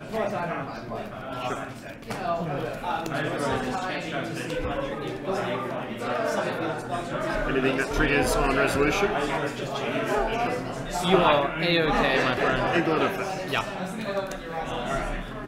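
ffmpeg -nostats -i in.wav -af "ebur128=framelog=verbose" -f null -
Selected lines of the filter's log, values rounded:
Integrated loudness:
  I:         -26.5 LUFS
  Threshold: -36.5 LUFS
Loudness range:
  LRA:         6.4 LU
  Threshold: -46.0 LUFS
  LRA low:   -29.8 LUFS
  LRA high:  -23.4 LUFS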